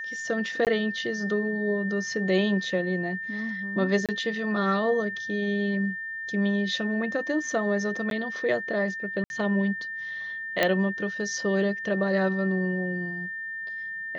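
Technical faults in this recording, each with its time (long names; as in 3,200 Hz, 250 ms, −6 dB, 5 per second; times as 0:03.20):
whistle 1,800 Hz −32 dBFS
0:00.65–0:00.67: drop-out 18 ms
0:04.06–0:04.09: drop-out 27 ms
0:08.10–0:08.11: drop-out 12 ms
0:09.24–0:09.30: drop-out 61 ms
0:10.63: click −8 dBFS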